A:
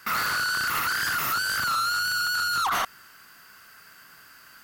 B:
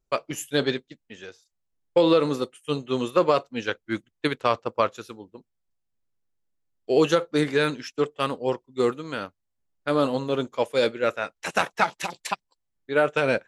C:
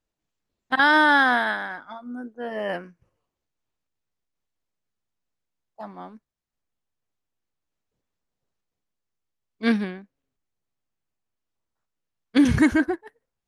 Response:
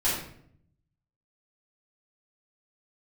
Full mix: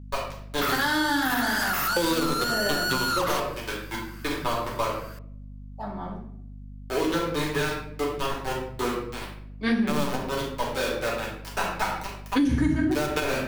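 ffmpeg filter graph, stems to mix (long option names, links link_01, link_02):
-filter_complex "[0:a]adelay=550,volume=1dB[link_01];[1:a]aeval=exprs='val(0)*gte(abs(val(0)),0.0944)':channel_layout=same,equalizer=frequency=1000:width=7.4:gain=6,volume=-1dB,asplit=2[link_02][link_03];[link_03]volume=-12.5dB[link_04];[2:a]lowshelf=frequency=170:gain=7.5,flanger=delay=5.3:depth=5:regen=-54:speed=1.2:shape=sinusoidal,volume=1dB,asplit=3[link_05][link_06][link_07];[link_06]volume=-7.5dB[link_08];[link_07]apad=whole_len=594189[link_09];[link_02][link_09]sidechaingate=range=-12dB:threshold=-56dB:ratio=16:detection=peak[link_10];[3:a]atrim=start_sample=2205[link_11];[link_04][link_08]amix=inputs=2:normalize=0[link_12];[link_12][link_11]afir=irnorm=-1:irlink=0[link_13];[link_01][link_10][link_05][link_13]amix=inputs=4:normalize=0,acrossover=split=320|3000[link_14][link_15][link_16];[link_15]acompressor=threshold=-21dB:ratio=6[link_17];[link_14][link_17][link_16]amix=inputs=3:normalize=0,aeval=exprs='val(0)+0.01*(sin(2*PI*50*n/s)+sin(2*PI*2*50*n/s)/2+sin(2*PI*3*50*n/s)/3+sin(2*PI*4*50*n/s)/4+sin(2*PI*5*50*n/s)/5)':channel_layout=same,acompressor=threshold=-21dB:ratio=4"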